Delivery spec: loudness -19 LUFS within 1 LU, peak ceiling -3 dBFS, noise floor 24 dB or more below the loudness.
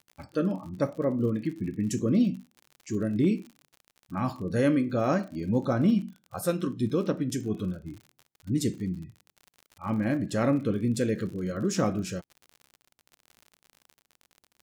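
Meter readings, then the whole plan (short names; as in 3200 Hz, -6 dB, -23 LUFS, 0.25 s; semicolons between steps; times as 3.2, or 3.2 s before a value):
ticks 57/s; loudness -28.5 LUFS; peak -14.5 dBFS; loudness target -19.0 LUFS
-> de-click; gain +9.5 dB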